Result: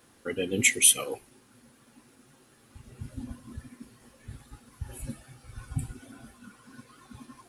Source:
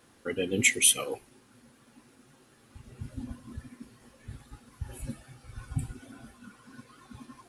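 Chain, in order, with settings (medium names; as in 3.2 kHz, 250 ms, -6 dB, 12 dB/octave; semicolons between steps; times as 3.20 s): treble shelf 9.7 kHz +6 dB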